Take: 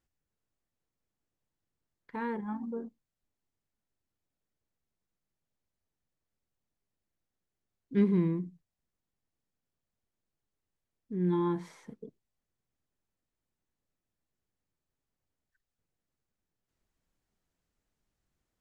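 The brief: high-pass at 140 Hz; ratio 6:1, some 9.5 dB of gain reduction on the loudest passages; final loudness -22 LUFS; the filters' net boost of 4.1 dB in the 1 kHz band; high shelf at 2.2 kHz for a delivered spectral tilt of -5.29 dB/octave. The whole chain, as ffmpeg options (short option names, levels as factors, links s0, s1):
-af "highpass=140,equalizer=f=1000:t=o:g=3.5,highshelf=f=2200:g=5.5,acompressor=threshold=0.0282:ratio=6,volume=6.68"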